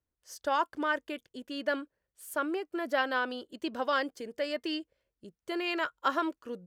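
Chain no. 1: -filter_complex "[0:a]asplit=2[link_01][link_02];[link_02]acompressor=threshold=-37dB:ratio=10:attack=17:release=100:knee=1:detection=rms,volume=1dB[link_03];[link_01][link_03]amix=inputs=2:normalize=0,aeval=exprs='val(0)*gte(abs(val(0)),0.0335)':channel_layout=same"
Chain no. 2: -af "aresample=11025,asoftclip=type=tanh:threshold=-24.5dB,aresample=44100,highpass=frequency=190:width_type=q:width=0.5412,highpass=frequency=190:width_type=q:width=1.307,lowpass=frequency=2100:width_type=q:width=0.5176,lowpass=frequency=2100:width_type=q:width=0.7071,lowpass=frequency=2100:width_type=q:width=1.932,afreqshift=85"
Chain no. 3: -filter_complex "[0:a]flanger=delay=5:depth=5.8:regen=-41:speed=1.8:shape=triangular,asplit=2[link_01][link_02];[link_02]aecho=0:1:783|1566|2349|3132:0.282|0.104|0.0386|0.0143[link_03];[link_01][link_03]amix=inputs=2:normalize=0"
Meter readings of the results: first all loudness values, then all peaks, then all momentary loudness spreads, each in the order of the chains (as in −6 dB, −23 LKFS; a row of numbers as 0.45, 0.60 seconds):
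−30.5, −35.5, −36.5 LKFS; −12.0, −20.0, −18.5 dBFS; 7, 9, 12 LU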